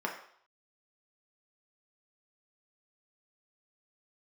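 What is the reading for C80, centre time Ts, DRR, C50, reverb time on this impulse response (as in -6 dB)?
10.5 dB, 23 ms, -0.5 dB, 7.5 dB, 0.60 s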